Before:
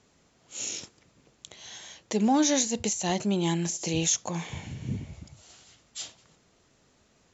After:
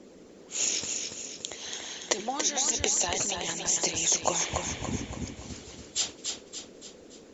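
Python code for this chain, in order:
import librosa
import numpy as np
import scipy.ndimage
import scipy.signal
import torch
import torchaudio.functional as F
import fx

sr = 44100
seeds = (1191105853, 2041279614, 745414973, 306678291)

p1 = fx.hum_notches(x, sr, base_hz=50, count=4)
p2 = fx.over_compress(p1, sr, threshold_db=-32.0, ratio=-0.5)
p3 = p1 + (p2 * 10.0 ** (2.0 / 20.0))
p4 = fx.hpss(p3, sr, part='harmonic', gain_db=-17)
p5 = p4 + fx.echo_feedback(p4, sr, ms=285, feedback_pct=47, wet_db=-5.0, dry=0)
p6 = fx.dmg_noise_band(p5, sr, seeds[0], low_hz=170.0, high_hz=520.0, level_db=-50.0)
y = fx.peak_eq(p6, sr, hz=160.0, db=-5.0, octaves=1.2)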